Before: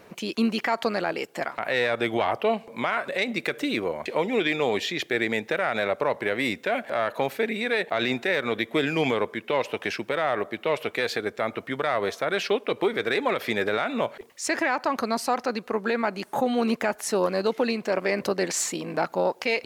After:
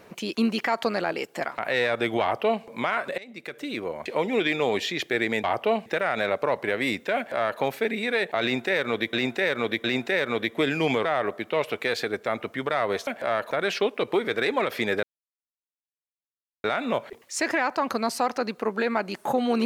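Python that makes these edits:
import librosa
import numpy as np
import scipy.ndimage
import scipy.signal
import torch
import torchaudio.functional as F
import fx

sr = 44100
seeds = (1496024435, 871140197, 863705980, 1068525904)

y = fx.edit(x, sr, fx.duplicate(start_s=2.22, length_s=0.42, to_s=5.44),
    fx.fade_in_from(start_s=3.18, length_s=1.08, floor_db=-21.5),
    fx.duplicate(start_s=6.75, length_s=0.44, to_s=12.2),
    fx.repeat(start_s=8.0, length_s=0.71, count=3),
    fx.cut(start_s=9.21, length_s=0.97),
    fx.insert_silence(at_s=13.72, length_s=1.61), tone=tone)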